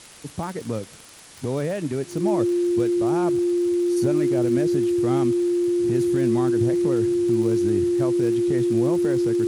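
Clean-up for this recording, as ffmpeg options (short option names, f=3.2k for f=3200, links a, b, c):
-af "adeclick=t=4,bandreject=f=350:w=30,afwtdn=0.0063"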